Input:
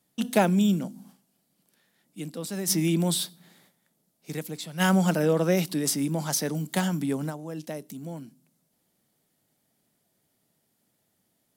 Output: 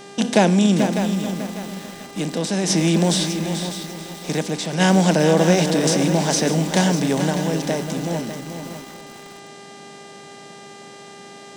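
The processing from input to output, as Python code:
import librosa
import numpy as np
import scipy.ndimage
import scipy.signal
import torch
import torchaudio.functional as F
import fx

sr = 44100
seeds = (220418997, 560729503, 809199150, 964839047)

p1 = fx.bin_compress(x, sr, power=0.6)
p2 = scipy.signal.sosfilt(scipy.signal.butter(4, 7800.0, 'lowpass', fs=sr, output='sos'), p1)
p3 = fx.peak_eq(p2, sr, hz=1300.0, db=-10.5, octaves=0.22)
p4 = fx.dmg_buzz(p3, sr, base_hz=400.0, harmonics=22, level_db=-46.0, tilt_db=-5, odd_only=False)
p5 = p4 + fx.echo_feedback(p4, sr, ms=436, feedback_pct=25, wet_db=-9, dry=0)
p6 = fx.echo_crushed(p5, sr, ms=599, feedback_pct=35, bits=6, wet_db=-9.5)
y = p6 * 10.0 ** (4.5 / 20.0)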